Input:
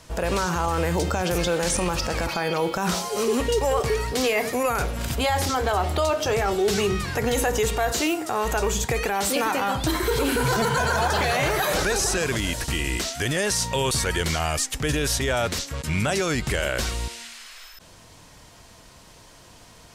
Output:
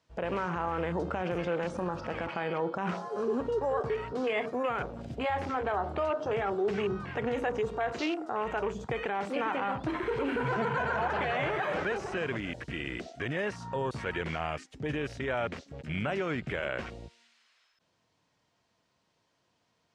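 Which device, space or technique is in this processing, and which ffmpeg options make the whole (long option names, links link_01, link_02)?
over-cleaned archive recording: -af "highpass=120,lowpass=5100,afwtdn=0.0316,volume=-7dB"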